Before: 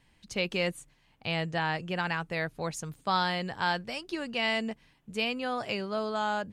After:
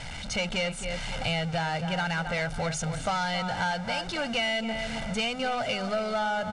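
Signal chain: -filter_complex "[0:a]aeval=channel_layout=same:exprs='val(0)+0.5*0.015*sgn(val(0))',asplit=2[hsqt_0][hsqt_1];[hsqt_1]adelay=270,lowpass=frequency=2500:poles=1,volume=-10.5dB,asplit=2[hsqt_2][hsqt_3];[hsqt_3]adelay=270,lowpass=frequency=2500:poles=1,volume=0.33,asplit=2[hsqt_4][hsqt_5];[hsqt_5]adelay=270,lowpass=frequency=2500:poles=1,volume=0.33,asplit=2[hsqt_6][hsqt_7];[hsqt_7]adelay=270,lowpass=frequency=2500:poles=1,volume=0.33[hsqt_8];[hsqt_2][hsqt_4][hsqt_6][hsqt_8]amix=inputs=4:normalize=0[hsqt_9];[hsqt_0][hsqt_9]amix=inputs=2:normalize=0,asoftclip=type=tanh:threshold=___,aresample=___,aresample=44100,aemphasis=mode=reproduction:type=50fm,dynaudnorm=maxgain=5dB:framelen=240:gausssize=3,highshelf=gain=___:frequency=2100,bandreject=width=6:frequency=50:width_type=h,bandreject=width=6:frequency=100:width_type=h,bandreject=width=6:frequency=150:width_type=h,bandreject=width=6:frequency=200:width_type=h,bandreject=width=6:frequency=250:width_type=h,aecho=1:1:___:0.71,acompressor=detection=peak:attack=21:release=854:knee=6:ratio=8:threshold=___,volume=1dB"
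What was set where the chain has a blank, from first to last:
-25.5dB, 22050, 6, 1.4, -26dB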